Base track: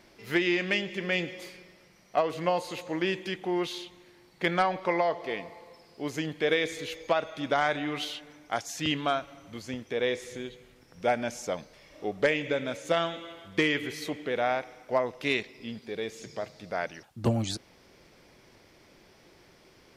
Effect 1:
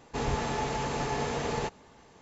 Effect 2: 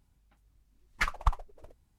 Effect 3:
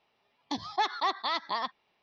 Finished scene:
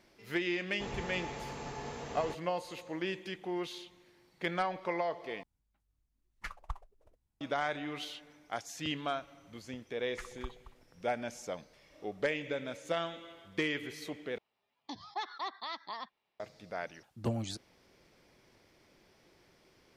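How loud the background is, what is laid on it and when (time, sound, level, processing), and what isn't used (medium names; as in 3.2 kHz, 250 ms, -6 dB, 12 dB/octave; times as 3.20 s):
base track -7.5 dB
0.66 s: add 1 -11 dB
5.43 s: replace with 2 -13.5 dB
9.17 s: add 2 -17 dB + delay 224 ms -12.5 dB
14.38 s: replace with 3 -10 dB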